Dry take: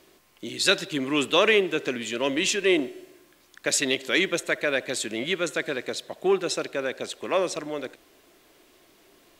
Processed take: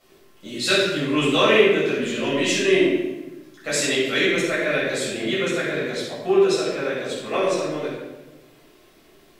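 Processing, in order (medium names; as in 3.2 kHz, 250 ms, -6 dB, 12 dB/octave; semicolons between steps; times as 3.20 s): simulated room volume 560 m³, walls mixed, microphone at 6.6 m; trim -10 dB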